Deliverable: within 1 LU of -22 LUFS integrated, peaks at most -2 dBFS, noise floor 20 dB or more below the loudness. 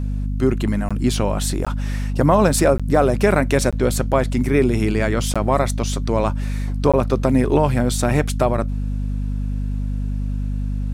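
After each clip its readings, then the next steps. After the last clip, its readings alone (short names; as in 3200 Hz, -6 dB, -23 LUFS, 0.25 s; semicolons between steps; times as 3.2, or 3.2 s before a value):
dropouts 6; longest dropout 16 ms; hum 50 Hz; harmonics up to 250 Hz; hum level -20 dBFS; loudness -20.0 LUFS; peak -3.0 dBFS; loudness target -22.0 LUFS
-> interpolate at 0.89/1.65/2.78/3.71/5.34/6.92, 16 ms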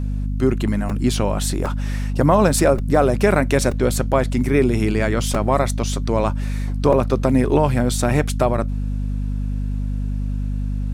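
dropouts 0; hum 50 Hz; harmonics up to 250 Hz; hum level -20 dBFS
-> de-hum 50 Hz, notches 5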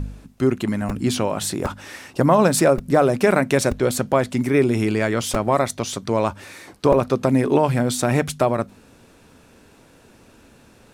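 hum none; loudness -20.0 LUFS; peak -3.5 dBFS; loudness target -22.0 LUFS
-> gain -2 dB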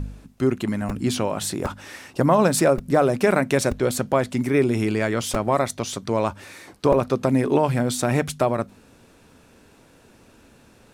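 loudness -22.0 LUFS; peak -5.5 dBFS; noise floor -54 dBFS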